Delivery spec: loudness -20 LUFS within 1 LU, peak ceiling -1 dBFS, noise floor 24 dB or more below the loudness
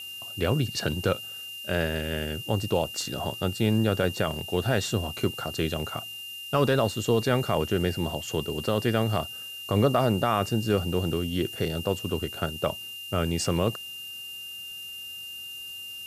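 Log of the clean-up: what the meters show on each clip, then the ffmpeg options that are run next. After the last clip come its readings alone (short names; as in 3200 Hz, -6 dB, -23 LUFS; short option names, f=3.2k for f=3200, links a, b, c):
steady tone 2800 Hz; tone level -37 dBFS; noise floor -39 dBFS; noise floor target -52 dBFS; loudness -28.0 LUFS; peak -11.5 dBFS; loudness target -20.0 LUFS
-> -af "bandreject=f=2.8k:w=30"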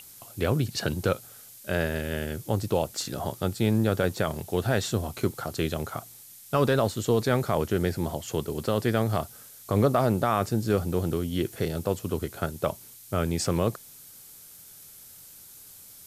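steady tone none; noise floor -49 dBFS; noise floor target -52 dBFS
-> -af "afftdn=nr=6:nf=-49"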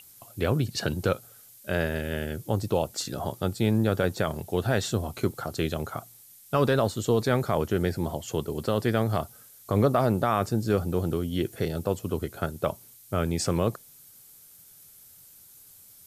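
noise floor -53 dBFS; loudness -28.0 LUFS; peak -11.5 dBFS; loudness target -20.0 LUFS
-> -af "volume=8dB"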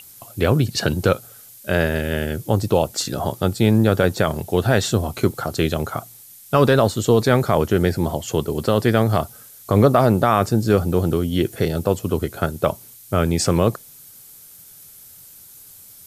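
loudness -20.0 LUFS; peak -3.5 dBFS; noise floor -45 dBFS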